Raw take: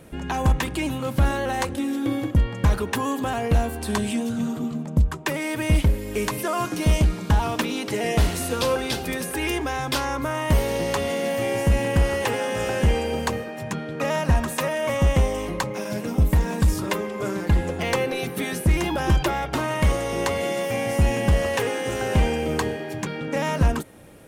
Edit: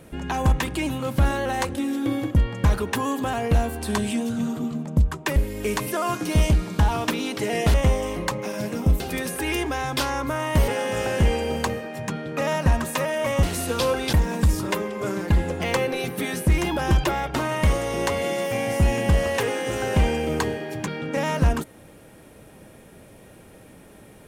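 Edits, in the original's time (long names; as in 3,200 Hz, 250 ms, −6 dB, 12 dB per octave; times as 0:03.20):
0:05.36–0:05.87: remove
0:08.25–0:08.95: swap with 0:15.06–0:16.32
0:10.63–0:12.31: remove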